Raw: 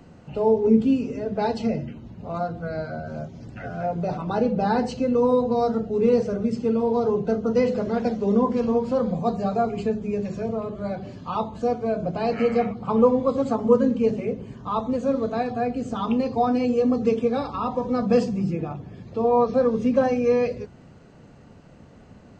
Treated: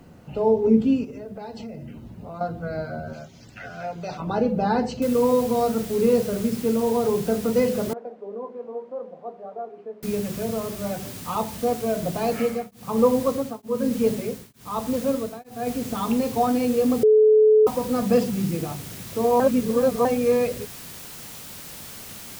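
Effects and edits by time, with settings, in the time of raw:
1.04–2.41 s: compression, threshold -33 dBFS
3.13–4.20 s: tilt shelf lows -9 dB, about 1.3 kHz
5.02 s: noise floor step -70 dB -40 dB
7.93–10.03 s: ladder band-pass 620 Hz, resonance 25%
12.26–15.67 s: tremolo of two beating tones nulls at 1.1 Hz
17.03–17.67 s: bleep 431 Hz -11.5 dBFS
19.40–20.05 s: reverse

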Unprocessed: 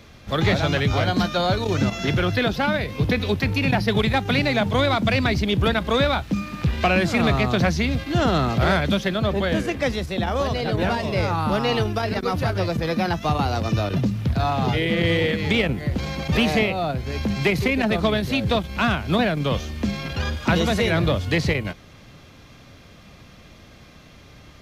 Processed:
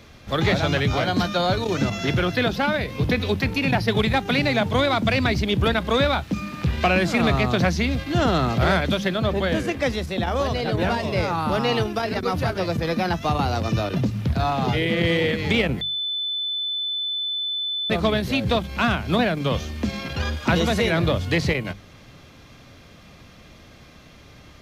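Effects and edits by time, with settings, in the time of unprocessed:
15.81–17.90 s: bleep 3.51 kHz -23.5 dBFS
whole clip: hum notches 50/100/150/200 Hz

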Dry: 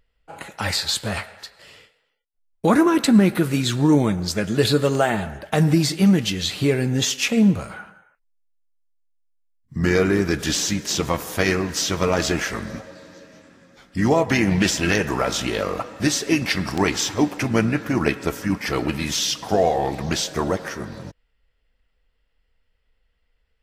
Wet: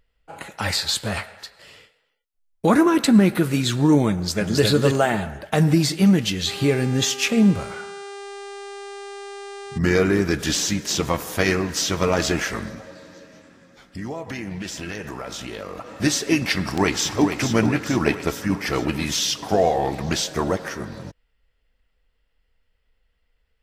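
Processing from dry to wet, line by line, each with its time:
4.13–4.64 s: echo throw 270 ms, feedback 15%, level -2.5 dB
6.46–9.77 s: mains buzz 400 Hz, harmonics 24, -36 dBFS -6 dB/octave
12.69–15.90 s: compression 3:1, threshold -32 dBFS
16.61–17.40 s: echo throw 440 ms, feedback 60%, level -7.5 dB

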